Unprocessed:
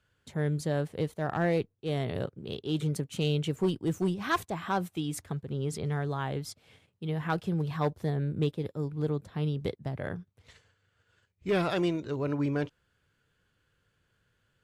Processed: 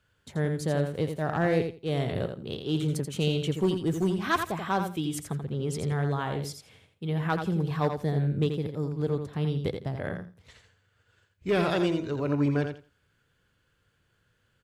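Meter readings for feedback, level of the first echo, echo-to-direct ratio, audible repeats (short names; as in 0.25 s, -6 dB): 17%, -7.0 dB, -7.0 dB, 2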